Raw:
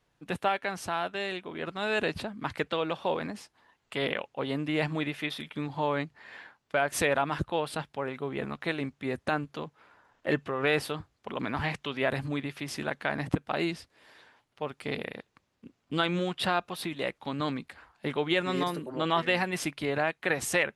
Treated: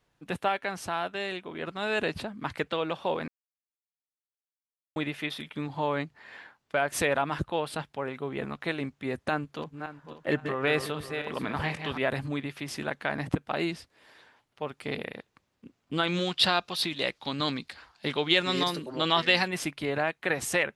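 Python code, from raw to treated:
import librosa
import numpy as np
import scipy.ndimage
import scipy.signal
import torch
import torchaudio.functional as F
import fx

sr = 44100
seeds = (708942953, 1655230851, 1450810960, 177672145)

y = fx.reverse_delay_fb(x, sr, ms=271, feedback_pct=47, wet_db=-7.5, at=(9.32, 11.98))
y = fx.peak_eq(y, sr, hz=4600.0, db=13.0, octaves=1.3, at=(16.07, 19.48))
y = fx.edit(y, sr, fx.silence(start_s=3.28, length_s=1.68), tone=tone)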